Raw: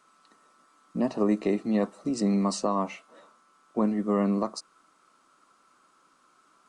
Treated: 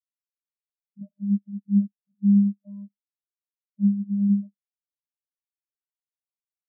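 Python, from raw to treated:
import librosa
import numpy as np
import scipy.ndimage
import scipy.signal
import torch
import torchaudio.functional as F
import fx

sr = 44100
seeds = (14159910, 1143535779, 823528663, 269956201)

y = fx.filter_lfo_lowpass(x, sr, shape='saw_up', hz=1.6, low_hz=850.0, high_hz=1900.0, q=0.72)
y = fx.vocoder(y, sr, bands=16, carrier='square', carrier_hz=201.0)
y = fx.spectral_expand(y, sr, expansion=2.5)
y = y * 10.0 ** (7.0 / 20.0)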